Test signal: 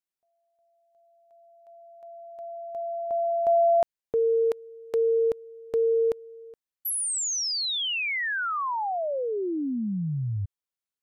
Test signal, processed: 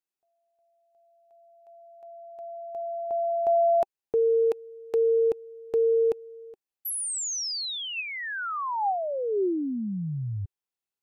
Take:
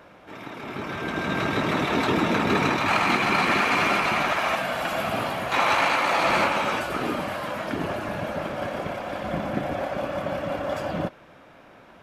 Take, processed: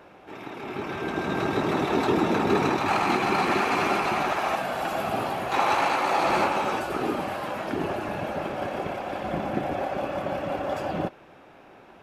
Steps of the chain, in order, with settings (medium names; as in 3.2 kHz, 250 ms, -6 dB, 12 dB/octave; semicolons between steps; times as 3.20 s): dynamic bell 2.5 kHz, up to -5 dB, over -36 dBFS, Q 1.3; small resonant body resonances 380/790/2600 Hz, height 7 dB, ringing for 25 ms; trim -2.5 dB